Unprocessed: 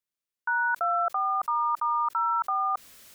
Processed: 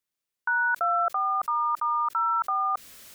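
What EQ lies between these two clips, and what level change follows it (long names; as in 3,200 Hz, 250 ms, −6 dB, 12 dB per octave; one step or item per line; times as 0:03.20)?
dynamic equaliser 900 Hz, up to −5 dB, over −40 dBFS, Q 1.7
+3.5 dB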